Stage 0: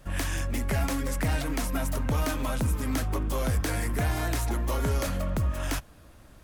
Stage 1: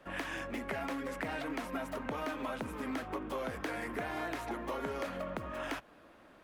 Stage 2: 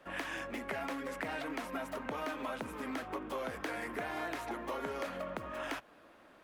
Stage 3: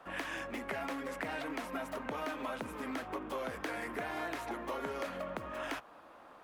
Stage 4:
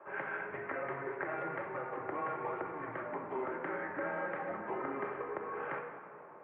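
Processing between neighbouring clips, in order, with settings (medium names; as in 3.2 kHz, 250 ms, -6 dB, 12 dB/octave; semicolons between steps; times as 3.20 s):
three-band isolator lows -22 dB, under 220 Hz, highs -16 dB, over 3.4 kHz; compression 2.5:1, threshold -36 dBFS, peak gain reduction 6 dB
bass shelf 210 Hz -6.5 dB
band noise 490–1300 Hz -58 dBFS
simulated room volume 3200 m³, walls mixed, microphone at 1.9 m; mistuned SSB -140 Hz 430–2200 Hz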